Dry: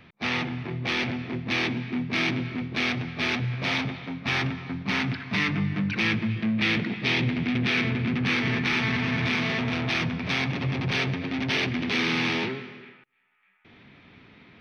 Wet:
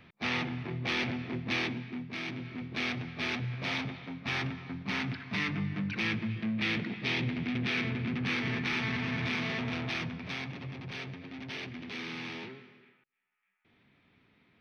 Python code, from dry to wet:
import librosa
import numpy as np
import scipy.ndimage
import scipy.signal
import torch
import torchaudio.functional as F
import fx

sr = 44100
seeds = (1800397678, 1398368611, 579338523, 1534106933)

y = fx.gain(x, sr, db=fx.line((1.5, -4.5), (2.21, -13.0), (2.74, -7.0), (9.76, -7.0), (10.79, -14.5)))